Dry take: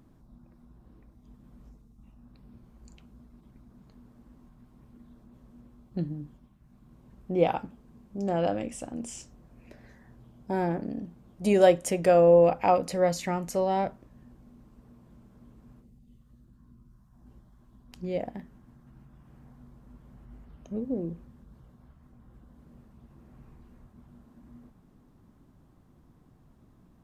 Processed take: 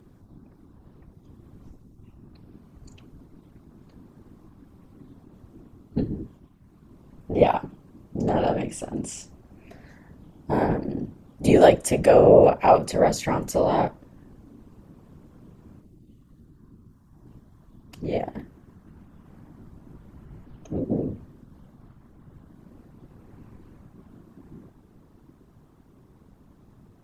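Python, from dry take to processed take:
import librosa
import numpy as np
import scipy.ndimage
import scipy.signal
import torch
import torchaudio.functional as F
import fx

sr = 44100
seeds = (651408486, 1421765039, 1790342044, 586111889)

y = fx.whisperise(x, sr, seeds[0])
y = y * 10.0 ** (5.0 / 20.0)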